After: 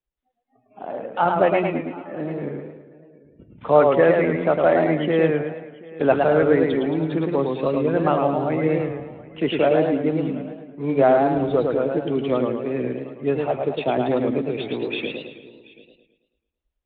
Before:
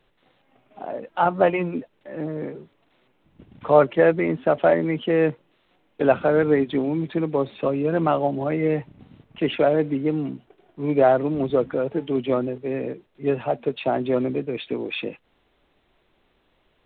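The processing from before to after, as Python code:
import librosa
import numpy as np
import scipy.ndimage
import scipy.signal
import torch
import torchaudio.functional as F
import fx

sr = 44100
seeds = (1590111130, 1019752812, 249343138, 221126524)

p1 = x + fx.echo_single(x, sr, ms=732, db=-21.0, dry=0)
p2 = fx.noise_reduce_blind(p1, sr, reduce_db=29)
y = fx.echo_warbled(p2, sr, ms=109, feedback_pct=49, rate_hz=2.8, cents=124, wet_db=-4)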